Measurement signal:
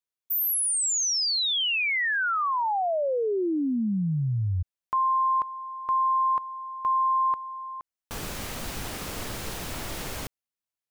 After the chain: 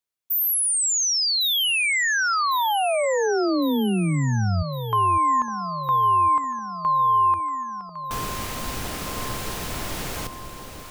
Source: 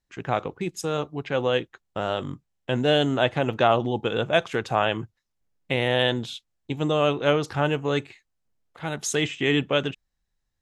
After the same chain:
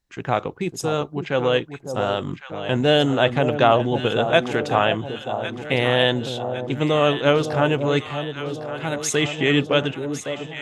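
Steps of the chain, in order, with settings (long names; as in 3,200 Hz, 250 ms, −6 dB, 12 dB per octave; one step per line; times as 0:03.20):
delay that swaps between a low-pass and a high-pass 553 ms, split 910 Hz, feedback 74%, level −8 dB
level +3.5 dB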